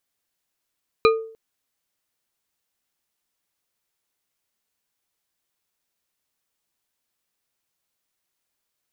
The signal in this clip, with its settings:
struck glass bar, length 0.30 s, lowest mode 447 Hz, modes 4, decay 0.51 s, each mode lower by 3.5 dB, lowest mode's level −10.5 dB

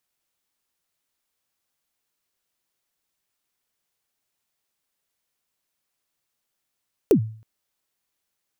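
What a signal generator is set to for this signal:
synth kick length 0.32 s, from 480 Hz, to 110 Hz, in 89 ms, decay 0.47 s, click on, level −9 dB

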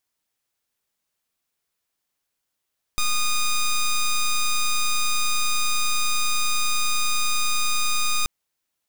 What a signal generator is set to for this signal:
pulse wave 1,230 Hz, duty 9% −20.5 dBFS 5.28 s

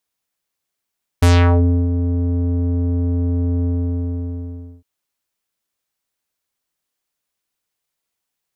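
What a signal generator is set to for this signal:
subtractive voice square F2 12 dB per octave, low-pass 330 Hz, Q 1.6, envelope 5.5 octaves, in 0.40 s, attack 8.5 ms, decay 0.66 s, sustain −9 dB, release 1.19 s, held 2.42 s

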